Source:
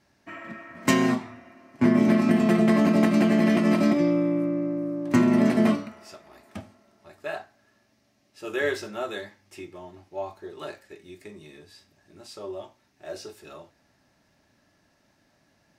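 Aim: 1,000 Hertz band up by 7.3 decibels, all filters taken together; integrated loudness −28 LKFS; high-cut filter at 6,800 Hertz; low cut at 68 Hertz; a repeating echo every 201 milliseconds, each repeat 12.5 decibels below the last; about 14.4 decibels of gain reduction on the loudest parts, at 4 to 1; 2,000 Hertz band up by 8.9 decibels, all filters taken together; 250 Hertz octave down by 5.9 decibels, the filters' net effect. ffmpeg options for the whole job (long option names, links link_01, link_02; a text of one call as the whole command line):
ffmpeg -i in.wav -af "highpass=68,lowpass=6800,equalizer=frequency=250:width_type=o:gain=-7.5,equalizer=frequency=1000:width_type=o:gain=7,equalizer=frequency=2000:width_type=o:gain=8.5,acompressor=threshold=-30dB:ratio=4,aecho=1:1:201|402|603:0.237|0.0569|0.0137,volume=6.5dB" out.wav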